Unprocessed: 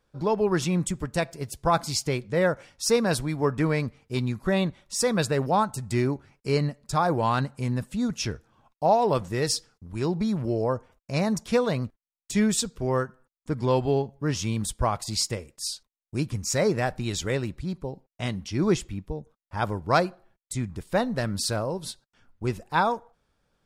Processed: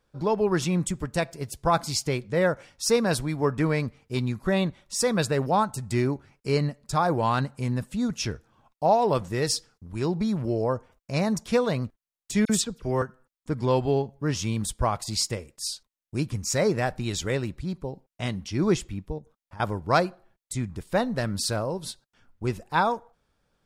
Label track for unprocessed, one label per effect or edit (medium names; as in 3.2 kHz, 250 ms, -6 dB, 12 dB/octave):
12.450000	13.020000	phase dispersion lows, late by 45 ms, half as late at 3 kHz
19.180000	19.600000	compression 12:1, threshold -40 dBFS